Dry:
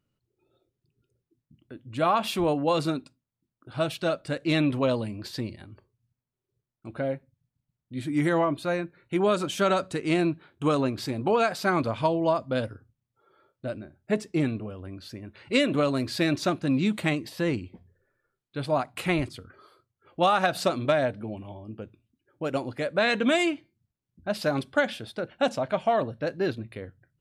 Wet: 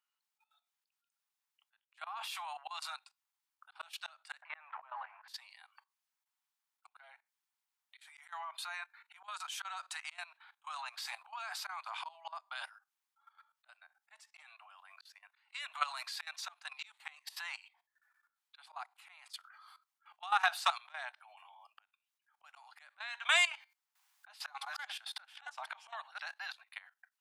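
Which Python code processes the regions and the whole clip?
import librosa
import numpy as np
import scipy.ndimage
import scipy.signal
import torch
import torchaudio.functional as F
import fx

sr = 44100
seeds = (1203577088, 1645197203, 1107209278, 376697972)

y = fx.chain(x, sr, fx.law_mismatch(coded='mu'),
    fx.lowpass(hz=1800.0, slope=24),
    fx.env_flatten(amount_pct=70), at=(4.42, 5.28))
y = fx.chain(y, sr, fx.reverse_delay(ms=543, wet_db=-9),
    fx.highpass(hz=310.0, slope=24),
    fx.band_squash(depth_pct=70), at=(23.51, 26.32))
y = scipy.signal.sosfilt(scipy.signal.butter(12, 780.0, 'highpass', fs=sr, output='sos'), y)
y = fx.auto_swell(y, sr, attack_ms=393.0)
y = fx.level_steps(y, sr, step_db=16)
y = F.gain(torch.from_numpy(y), 5.5).numpy()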